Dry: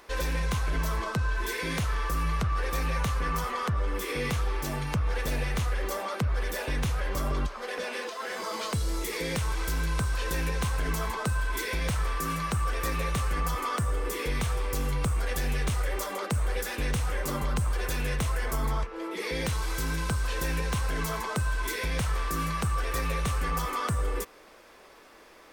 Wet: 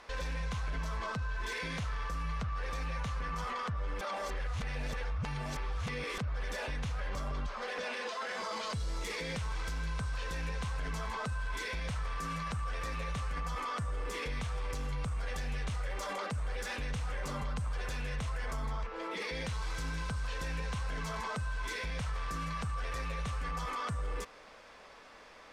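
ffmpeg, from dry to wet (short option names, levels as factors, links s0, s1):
-filter_complex "[0:a]asplit=3[s0][s1][s2];[s0]atrim=end=4.012[s3];[s1]atrim=start=4.008:end=6.182,asetpts=PTS-STARTPTS,areverse[s4];[s2]atrim=start=6.178[s5];[s3][s4]acrossfade=d=0.004:c1=hsin:c2=hsin[s6];[s6][s5]acrossfade=d=0.004:c1=hsin:c2=hsin,lowpass=6400,equalizer=f=350:t=o:w=0.48:g=-10,alimiter=level_in=2:limit=0.0631:level=0:latency=1:release=11,volume=0.501"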